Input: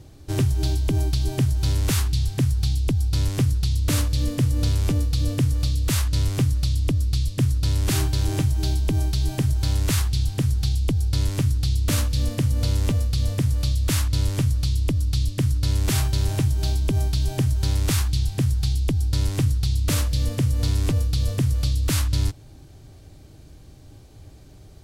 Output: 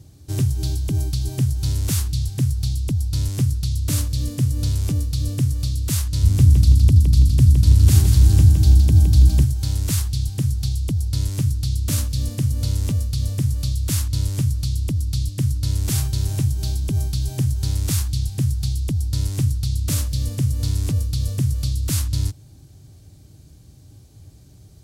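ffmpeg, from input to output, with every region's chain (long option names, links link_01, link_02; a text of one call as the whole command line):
ffmpeg -i in.wav -filter_complex "[0:a]asettb=1/sr,asplit=3[link_01][link_02][link_03];[link_01]atrim=end=6.234[link_04];[link_02]atrim=start=6.23:end=9.44,asetpts=PTS-STARTPTS,afade=type=in:duration=0.004:curve=qsin,afade=type=out:start_time=3.206:duration=0.004:curve=qsin,equalizer=frequency=74:width=1.5:gain=12,aecho=1:1:164|328|492|656|820:0.501|0.221|0.097|0.0427|0.0188,atrim=end_sample=141561,aeval=exprs='val(0)+0.0631*(sin(2*PI*60*n/s)+sin(2*PI*2*60*n/s)/2+sin(2*PI*3*60*n/s)/3+sin(2*PI*4*60*n/s)/4+sin(2*PI*5*60*n/s)/5)':channel_layout=same[link_05];[link_03]atrim=start=9.436[link_06];[link_04][link_05]acrossfade=duration=0.004:curve1=hsin:curve2=qsin[link_07];[link_07][link_06]acrossfade=duration=0.004:curve1=qsin:curve2=hsin,highpass=71,bass=frequency=250:gain=10,treble=frequency=4000:gain=10,volume=-7dB" out.wav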